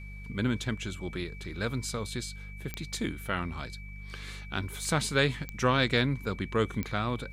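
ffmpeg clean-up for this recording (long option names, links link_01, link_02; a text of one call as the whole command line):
ffmpeg -i in.wav -af "adeclick=threshold=4,bandreject=frequency=49.7:width_type=h:width=4,bandreject=frequency=99.4:width_type=h:width=4,bandreject=frequency=149.1:width_type=h:width=4,bandreject=frequency=198.8:width_type=h:width=4,bandreject=frequency=2300:width=30" out.wav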